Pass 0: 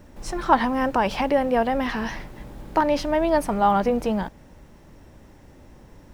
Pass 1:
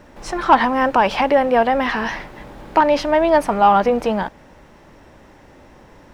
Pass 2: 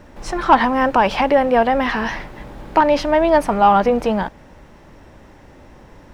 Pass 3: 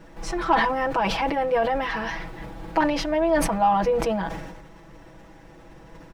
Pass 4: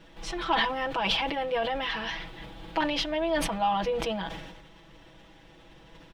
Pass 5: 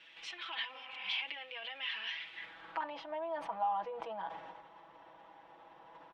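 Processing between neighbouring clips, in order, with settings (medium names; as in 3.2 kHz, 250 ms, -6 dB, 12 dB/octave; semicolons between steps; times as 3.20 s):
overdrive pedal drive 11 dB, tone 2.6 kHz, clips at -4 dBFS; trim +3.5 dB
bass shelf 160 Hz +5.5 dB
compression 1.5:1, threshold -26 dBFS, peak gain reduction 7 dB; comb 6.1 ms, depth 97%; decay stretcher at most 43 dB/s; trim -6 dB
peaking EQ 3.3 kHz +14 dB 0.86 oct; trim -7 dB
compression 2.5:1, threshold -40 dBFS, peak gain reduction 12.5 dB; spectral replace 0.76–1.15 s, 220–3000 Hz both; band-pass sweep 2.6 kHz -> 910 Hz, 2.28–2.94 s; trim +5.5 dB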